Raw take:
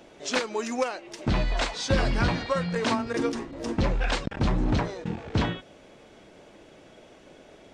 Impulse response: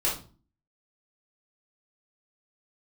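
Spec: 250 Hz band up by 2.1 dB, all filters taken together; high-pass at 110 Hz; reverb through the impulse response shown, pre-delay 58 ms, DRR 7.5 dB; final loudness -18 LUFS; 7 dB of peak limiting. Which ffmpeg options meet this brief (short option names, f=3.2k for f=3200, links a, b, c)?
-filter_complex "[0:a]highpass=110,equalizer=f=250:t=o:g=3,alimiter=limit=-18.5dB:level=0:latency=1,asplit=2[a][b];[1:a]atrim=start_sample=2205,adelay=58[c];[b][c]afir=irnorm=-1:irlink=0,volume=-17dB[d];[a][d]amix=inputs=2:normalize=0,volume=11dB"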